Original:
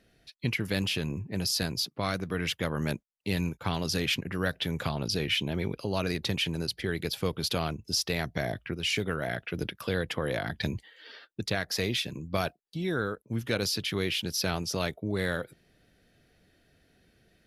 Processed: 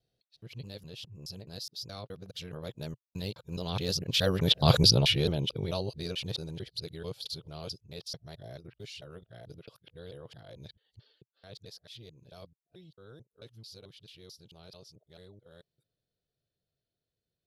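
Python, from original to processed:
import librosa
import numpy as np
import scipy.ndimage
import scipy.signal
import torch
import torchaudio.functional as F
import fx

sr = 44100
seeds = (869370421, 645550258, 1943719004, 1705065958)

y = fx.local_reverse(x, sr, ms=215.0)
y = fx.doppler_pass(y, sr, speed_mps=8, closest_m=1.8, pass_at_s=4.75)
y = fx.graphic_eq_10(y, sr, hz=(125, 250, 500, 2000, 4000), db=(9, -5, 7, -9, 10))
y = y * librosa.db_to_amplitude(6.5)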